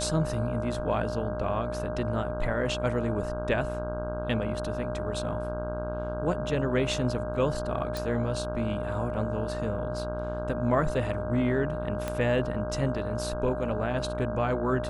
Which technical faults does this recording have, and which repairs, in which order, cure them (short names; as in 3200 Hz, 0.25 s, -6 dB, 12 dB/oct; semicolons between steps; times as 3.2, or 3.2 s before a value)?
buzz 60 Hz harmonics 27 -35 dBFS
tone 610 Hz -33 dBFS
7.97 pop
12.08 pop -16 dBFS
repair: de-click; de-hum 60 Hz, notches 27; notch 610 Hz, Q 30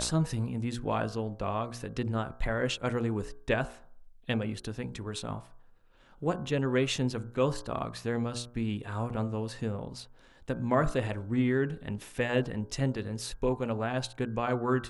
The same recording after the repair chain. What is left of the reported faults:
12.08 pop